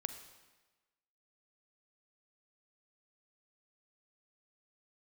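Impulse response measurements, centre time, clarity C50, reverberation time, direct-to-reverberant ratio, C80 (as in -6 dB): 16 ms, 10.0 dB, 1.2 s, 9.0 dB, 11.5 dB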